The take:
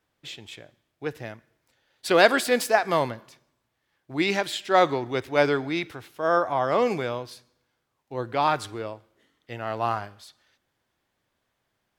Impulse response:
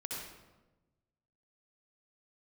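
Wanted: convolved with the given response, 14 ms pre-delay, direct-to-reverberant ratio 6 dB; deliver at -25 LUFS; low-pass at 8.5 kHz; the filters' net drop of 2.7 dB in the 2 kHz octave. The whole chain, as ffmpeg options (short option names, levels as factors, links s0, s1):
-filter_complex "[0:a]lowpass=8500,equalizer=f=2000:t=o:g=-3.5,asplit=2[s0][s1];[1:a]atrim=start_sample=2205,adelay=14[s2];[s1][s2]afir=irnorm=-1:irlink=0,volume=0.473[s3];[s0][s3]amix=inputs=2:normalize=0,volume=0.891"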